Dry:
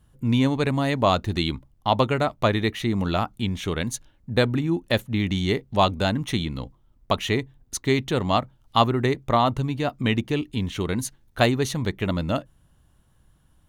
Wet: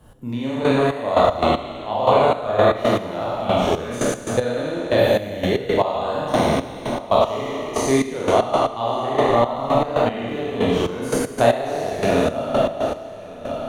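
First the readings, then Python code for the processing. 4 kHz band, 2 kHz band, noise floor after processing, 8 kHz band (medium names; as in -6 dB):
-1.0 dB, +1.5 dB, -35 dBFS, +3.0 dB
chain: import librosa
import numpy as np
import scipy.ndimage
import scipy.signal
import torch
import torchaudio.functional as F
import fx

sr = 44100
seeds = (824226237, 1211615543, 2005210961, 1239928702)

p1 = fx.spec_trails(x, sr, decay_s=2.34)
p2 = fx.rider(p1, sr, range_db=5, speed_s=0.5)
p3 = p1 + (p2 * librosa.db_to_amplitude(1.0))
p4 = fx.peak_eq(p3, sr, hz=600.0, db=11.0, octaves=1.7)
p5 = p4 + fx.echo_single(p4, sr, ms=1132, db=-17.5, dry=0)
p6 = fx.rev_schroeder(p5, sr, rt60_s=0.78, comb_ms=26, drr_db=-3.5)
p7 = fx.step_gate(p6, sr, bpm=116, pattern='x....xx..x.', floor_db=-12.0, edge_ms=4.5)
p8 = fx.low_shelf(p7, sr, hz=180.0, db=3.0)
p9 = fx.band_squash(p8, sr, depth_pct=40)
y = p9 * librosa.db_to_amplitude(-15.5)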